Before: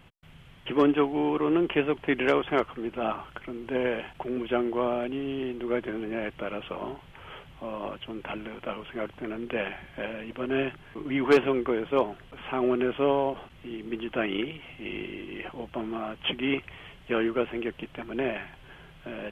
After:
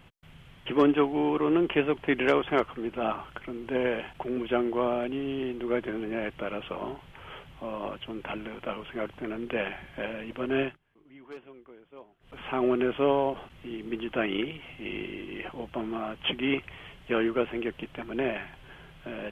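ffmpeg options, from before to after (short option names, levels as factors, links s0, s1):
-filter_complex "[0:a]asplit=3[s0][s1][s2];[s0]atrim=end=10.78,asetpts=PTS-STARTPTS,afade=t=out:st=10.63:d=0.15:silence=0.0630957[s3];[s1]atrim=start=10.78:end=12.2,asetpts=PTS-STARTPTS,volume=0.0631[s4];[s2]atrim=start=12.2,asetpts=PTS-STARTPTS,afade=t=in:d=0.15:silence=0.0630957[s5];[s3][s4][s5]concat=n=3:v=0:a=1"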